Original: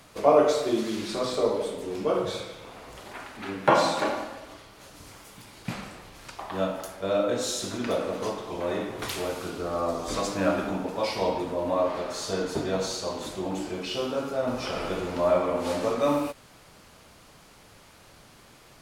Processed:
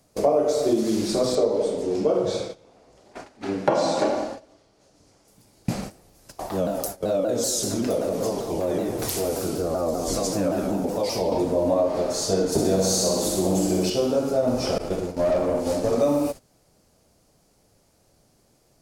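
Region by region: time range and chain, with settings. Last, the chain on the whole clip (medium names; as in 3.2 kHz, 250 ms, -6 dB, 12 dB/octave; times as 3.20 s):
1.35–5.28 s: low-pass 6.6 kHz + bass shelf 130 Hz -6.5 dB
5.90–11.32 s: treble shelf 11 kHz +10 dB + compression 2.5:1, threshold -30 dBFS + vibrato with a chosen wave saw down 5.2 Hz, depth 160 cents
12.52–13.90 s: treble shelf 7.7 kHz +11.5 dB + flutter echo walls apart 11 m, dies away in 0.89 s
14.78–15.93 s: expander -28 dBFS + valve stage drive 24 dB, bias 0.55
whole clip: gate -39 dBFS, range -16 dB; high-order bell 1.9 kHz -10.5 dB 2.3 oct; compression 6:1, threshold -26 dBFS; trim +9 dB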